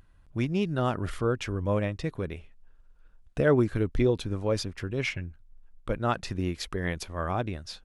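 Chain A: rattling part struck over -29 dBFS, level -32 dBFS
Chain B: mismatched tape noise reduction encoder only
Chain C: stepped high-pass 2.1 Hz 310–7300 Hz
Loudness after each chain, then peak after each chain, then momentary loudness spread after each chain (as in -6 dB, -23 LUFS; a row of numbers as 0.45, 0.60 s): -29.5, -29.5, -26.0 LUFS; -11.0, -11.0, -7.5 dBFS; 12, 12, 21 LU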